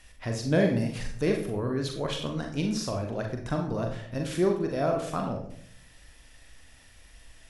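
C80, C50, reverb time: 10.0 dB, 6.5 dB, 0.65 s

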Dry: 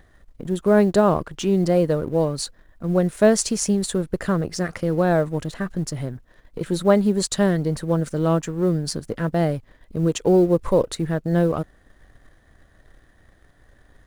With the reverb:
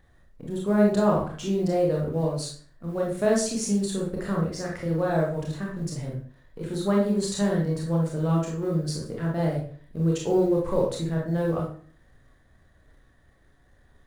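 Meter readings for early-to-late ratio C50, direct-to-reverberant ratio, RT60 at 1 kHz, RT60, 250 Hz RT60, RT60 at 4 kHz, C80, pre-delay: 3.5 dB, -3.0 dB, 0.45 s, 0.45 s, 0.55 s, 0.35 s, 9.5 dB, 24 ms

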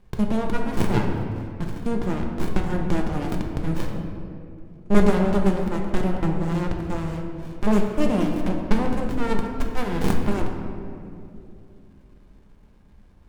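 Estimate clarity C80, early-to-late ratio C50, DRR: 5.0 dB, 4.0 dB, 1.0 dB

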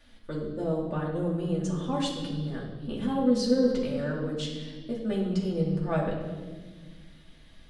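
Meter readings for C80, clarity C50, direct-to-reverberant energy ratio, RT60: 5.5 dB, 3.5 dB, -4.0 dB, 1.5 s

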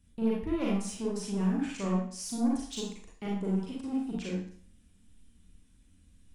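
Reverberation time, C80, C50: 0.50 s, 6.5 dB, 1.0 dB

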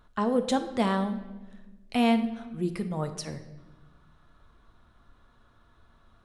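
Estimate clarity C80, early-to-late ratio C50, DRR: 13.0 dB, 11.0 dB, 7.5 dB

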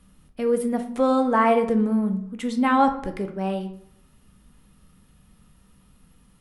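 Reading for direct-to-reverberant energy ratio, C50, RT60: 6.0 dB, 11.0 dB, 0.70 s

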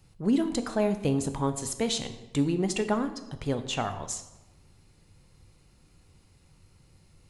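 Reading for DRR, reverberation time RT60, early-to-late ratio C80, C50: 8.5 dB, 1.1 s, 13.0 dB, 11.0 dB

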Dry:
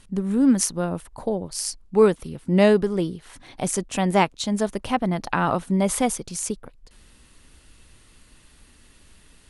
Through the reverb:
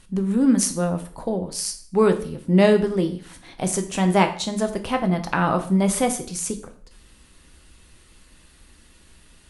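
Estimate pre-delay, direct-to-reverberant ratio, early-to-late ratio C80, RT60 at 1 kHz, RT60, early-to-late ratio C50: 5 ms, 5.5 dB, 15.5 dB, 0.45 s, 0.50 s, 12.0 dB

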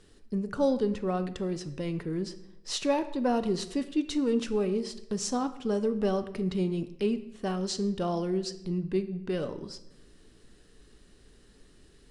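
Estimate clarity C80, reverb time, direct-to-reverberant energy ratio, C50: 16.0 dB, 0.85 s, 10.0 dB, 13.5 dB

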